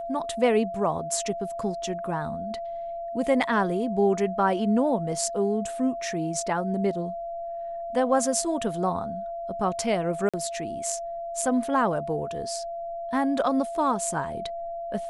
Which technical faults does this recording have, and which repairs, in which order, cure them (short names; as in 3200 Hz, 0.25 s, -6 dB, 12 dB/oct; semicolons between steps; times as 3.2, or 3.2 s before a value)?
tone 680 Hz -31 dBFS
10.29–10.34 gap 46 ms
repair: notch 680 Hz, Q 30; interpolate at 10.29, 46 ms